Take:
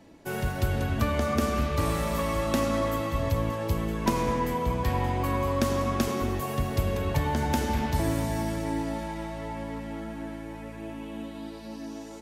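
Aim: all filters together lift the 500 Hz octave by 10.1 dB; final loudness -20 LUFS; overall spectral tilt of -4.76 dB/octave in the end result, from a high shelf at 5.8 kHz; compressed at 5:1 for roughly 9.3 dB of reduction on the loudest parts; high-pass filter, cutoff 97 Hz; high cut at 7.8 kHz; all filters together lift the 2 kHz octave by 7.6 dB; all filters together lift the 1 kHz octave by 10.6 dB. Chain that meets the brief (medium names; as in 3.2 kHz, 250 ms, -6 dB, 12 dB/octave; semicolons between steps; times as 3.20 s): high-pass 97 Hz; low-pass 7.8 kHz; peaking EQ 500 Hz +9 dB; peaking EQ 1 kHz +8.5 dB; peaking EQ 2 kHz +5.5 dB; treble shelf 5.8 kHz +5 dB; compression 5:1, threshold -25 dBFS; trim +9 dB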